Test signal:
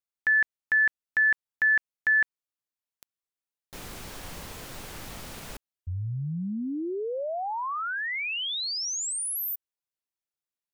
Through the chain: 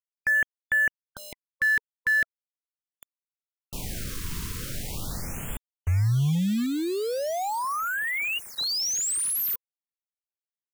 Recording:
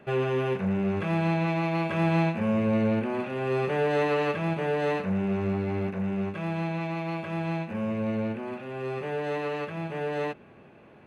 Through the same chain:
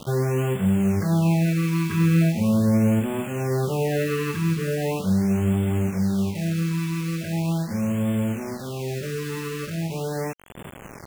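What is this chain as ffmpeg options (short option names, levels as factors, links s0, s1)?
-filter_complex "[0:a]bass=f=250:g=10,treble=f=4000:g=4,asplit=2[s0][s1];[s1]acompressor=mode=upward:threshold=0.0794:ratio=2.5:attack=0.12:release=485:knee=2.83:detection=peak,volume=1.26[s2];[s0][s2]amix=inputs=2:normalize=0,acrusher=bits=4:mix=0:aa=0.000001,afftfilt=real='re*(1-between(b*sr/1024,630*pow(5100/630,0.5+0.5*sin(2*PI*0.4*pts/sr))/1.41,630*pow(5100/630,0.5+0.5*sin(2*PI*0.4*pts/sr))*1.41))':imag='im*(1-between(b*sr/1024,630*pow(5100/630,0.5+0.5*sin(2*PI*0.4*pts/sr))/1.41,630*pow(5100/630,0.5+0.5*sin(2*PI*0.4*pts/sr))*1.41))':win_size=1024:overlap=0.75,volume=0.422"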